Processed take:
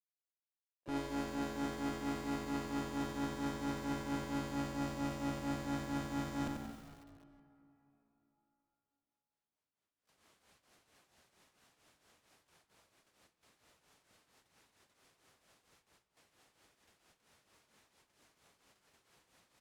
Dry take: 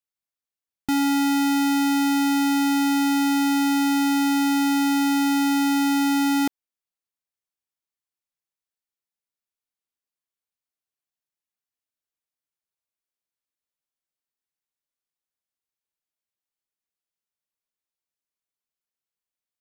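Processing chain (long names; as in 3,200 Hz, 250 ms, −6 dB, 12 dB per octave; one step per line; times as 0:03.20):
camcorder AGC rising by 8.1 dB per second
low-pass filter 9,400 Hz 12 dB per octave
noise gate with hold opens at −55 dBFS
high-pass filter 50 Hz 12 dB per octave
high-shelf EQ 2,300 Hz −9.5 dB
reversed playback
downward compressor 10 to 1, threshold −35 dBFS, peak gain reduction 14.5 dB
reversed playback
pitch-shifted copies added −12 semitones −8 dB, +3 semitones −10 dB, +12 semitones −18 dB
asymmetric clip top −43.5 dBFS
shaped tremolo triangle 4.4 Hz, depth 75%
echo with shifted repeats 230 ms, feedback 46%, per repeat −61 Hz, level −14.5 dB
on a send at −14 dB: convolution reverb RT60 3.9 s, pre-delay 18 ms
on the sum: feedback echo at a low word length 91 ms, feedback 55%, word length 10 bits, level −4 dB
level +2.5 dB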